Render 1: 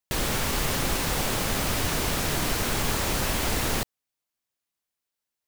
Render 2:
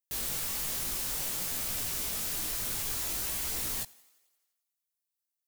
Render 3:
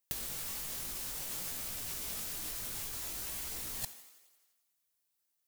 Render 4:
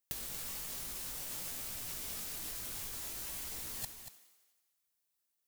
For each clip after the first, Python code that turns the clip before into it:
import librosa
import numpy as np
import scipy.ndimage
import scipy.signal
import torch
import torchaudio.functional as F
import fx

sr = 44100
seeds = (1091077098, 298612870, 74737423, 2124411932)

y1 = librosa.effects.preemphasis(x, coef=0.8, zi=[0.0])
y1 = fx.echo_thinned(y1, sr, ms=87, feedback_pct=64, hz=210.0, wet_db=-23.5)
y1 = fx.chorus_voices(y1, sr, voices=2, hz=0.56, base_ms=19, depth_ms=3.3, mix_pct=45)
y2 = fx.over_compress(y1, sr, threshold_db=-38.0, ratio=-0.5)
y3 = y2 + 10.0 ** (-9.5 / 20.0) * np.pad(y2, (int(235 * sr / 1000.0), 0))[:len(y2)]
y3 = y3 * 10.0 ** (-2.5 / 20.0)